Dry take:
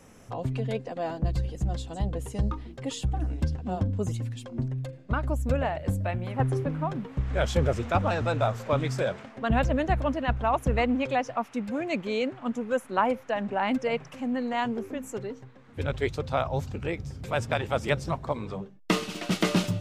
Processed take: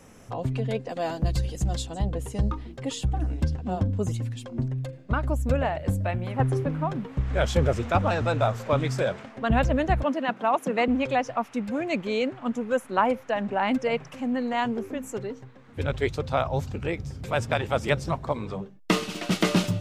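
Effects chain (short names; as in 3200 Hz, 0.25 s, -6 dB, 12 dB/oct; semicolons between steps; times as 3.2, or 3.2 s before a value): 0.89–1.87 high shelf 3300 Hz +10.5 dB; 10.03–10.88 steep high-pass 180 Hz 48 dB/oct; gain +2 dB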